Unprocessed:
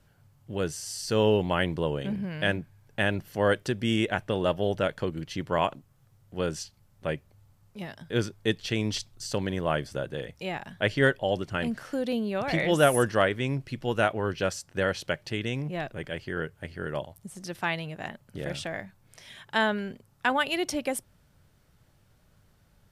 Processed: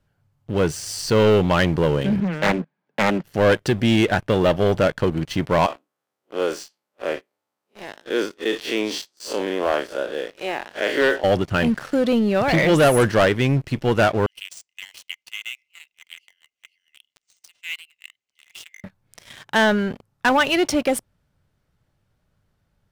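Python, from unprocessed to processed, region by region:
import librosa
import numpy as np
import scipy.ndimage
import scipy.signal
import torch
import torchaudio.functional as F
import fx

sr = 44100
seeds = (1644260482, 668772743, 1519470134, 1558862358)

y = fx.chain(x, sr, fx.steep_highpass(hz=160.0, slope=72),
    fx.air_absorb(metres=200.0),
    fx.doppler_dist(depth_ms=0.45), at=(2.2, 3.24))
y = fx.chain(y, sr, fx.spec_blur(span_ms=99.0),
    fx.highpass(hz=300.0, slope=24), at=(5.66, 11.24))
y = fx.chain(y, sr, fx.cheby_ripple_highpass(hz=2000.0, ripple_db=9),
    fx.resample_linear(factor=3), at=(14.26, 18.84))
y = fx.high_shelf(y, sr, hz=5400.0, db=-7.0)
y = fx.leveller(y, sr, passes=3)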